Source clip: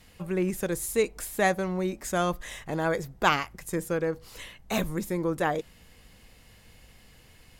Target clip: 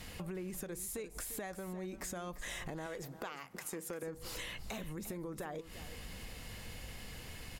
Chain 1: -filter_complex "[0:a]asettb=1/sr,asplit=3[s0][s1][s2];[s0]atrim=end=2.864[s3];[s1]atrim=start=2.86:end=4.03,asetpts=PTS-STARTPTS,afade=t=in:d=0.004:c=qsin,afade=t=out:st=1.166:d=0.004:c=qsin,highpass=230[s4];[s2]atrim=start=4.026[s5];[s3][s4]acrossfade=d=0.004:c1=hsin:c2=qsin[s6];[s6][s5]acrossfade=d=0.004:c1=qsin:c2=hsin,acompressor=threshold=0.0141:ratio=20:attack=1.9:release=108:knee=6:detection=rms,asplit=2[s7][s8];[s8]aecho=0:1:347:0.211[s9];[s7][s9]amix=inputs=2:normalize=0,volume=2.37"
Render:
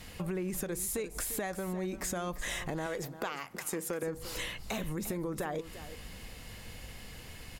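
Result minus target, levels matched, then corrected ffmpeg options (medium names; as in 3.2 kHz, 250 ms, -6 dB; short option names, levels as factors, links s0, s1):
compression: peak gain reduction -7 dB
-filter_complex "[0:a]asettb=1/sr,asplit=3[s0][s1][s2];[s0]atrim=end=2.864[s3];[s1]atrim=start=2.86:end=4.03,asetpts=PTS-STARTPTS,afade=t=in:d=0.004:c=qsin,afade=t=out:st=1.166:d=0.004:c=qsin,highpass=230[s4];[s2]atrim=start=4.026[s5];[s3][s4]acrossfade=d=0.004:c1=hsin:c2=qsin[s6];[s6][s5]acrossfade=d=0.004:c1=qsin:c2=hsin,acompressor=threshold=0.00596:ratio=20:attack=1.9:release=108:knee=6:detection=rms,asplit=2[s7][s8];[s8]aecho=0:1:347:0.211[s9];[s7][s9]amix=inputs=2:normalize=0,volume=2.37"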